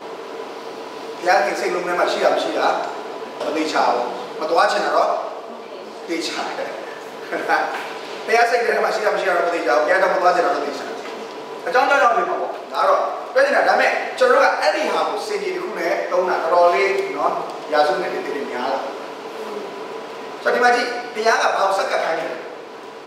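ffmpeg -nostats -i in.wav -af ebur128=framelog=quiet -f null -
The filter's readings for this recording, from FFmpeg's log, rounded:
Integrated loudness:
  I:         -19.2 LUFS
  Threshold: -29.8 LUFS
Loudness range:
  LRA:         4.8 LU
  Threshold: -39.7 LUFS
  LRA low:   -22.5 LUFS
  LRA high:  -17.7 LUFS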